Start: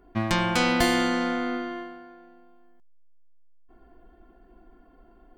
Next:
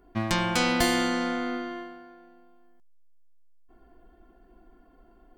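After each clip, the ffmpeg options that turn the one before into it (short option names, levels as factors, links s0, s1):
-af "bass=f=250:g=0,treble=f=4000:g=4,volume=0.794"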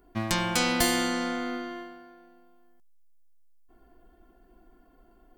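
-af "highshelf=f=6600:g=10,volume=0.794"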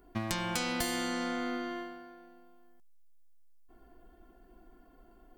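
-af "acompressor=threshold=0.0282:ratio=4"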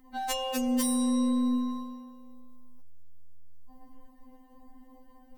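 -af "afftfilt=real='re*3.46*eq(mod(b,12),0)':imag='im*3.46*eq(mod(b,12),0)':win_size=2048:overlap=0.75,volume=2.24"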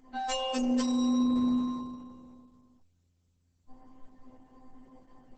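-ar 48000 -c:a libopus -b:a 10k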